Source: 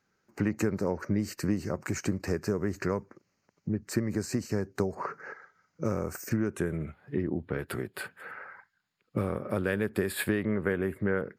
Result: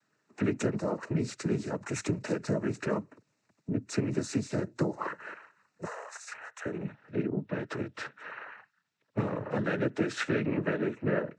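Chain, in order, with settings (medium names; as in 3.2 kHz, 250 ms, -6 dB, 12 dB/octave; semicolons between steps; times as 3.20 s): 5.84–6.65 s: elliptic high-pass 640 Hz, stop band 40 dB; noise-vocoded speech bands 12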